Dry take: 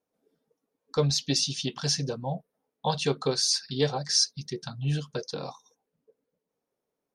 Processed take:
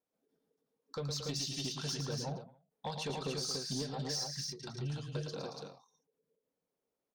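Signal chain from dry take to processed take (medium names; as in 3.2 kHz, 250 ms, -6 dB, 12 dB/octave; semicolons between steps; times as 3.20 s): 3.09–3.83 s: peaking EQ 210 Hz +9.5 dB 1.9 oct; compression 6:1, threshold -26 dBFS, peak gain reduction 10.5 dB; saturation -24 dBFS, distortion -16 dB; multi-tap echo 112/226/287 ms -7/-10.5/-4 dB; endings held to a fixed fall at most 120 dB/s; trim -7 dB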